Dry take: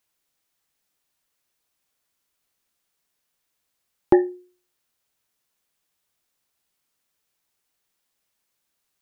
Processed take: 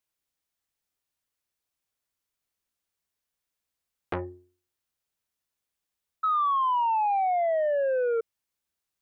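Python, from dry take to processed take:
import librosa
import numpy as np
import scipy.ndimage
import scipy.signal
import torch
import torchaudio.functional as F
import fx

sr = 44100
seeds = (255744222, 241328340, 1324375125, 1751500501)

y = fx.octave_divider(x, sr, octaves=2, level_db=-1.0)
y = fx.spec_paint(y, sr, seeds[0], shape='fall', start_s=6.23, length_s=1.98, low_hz=450.0, high_hz=1300.0, level_db=-15.0)
y = fx.transformer_sat(y, sr, knee_hz=1200.0)
y = F.gain(torch.from_numpy(y), -9.0).numpy()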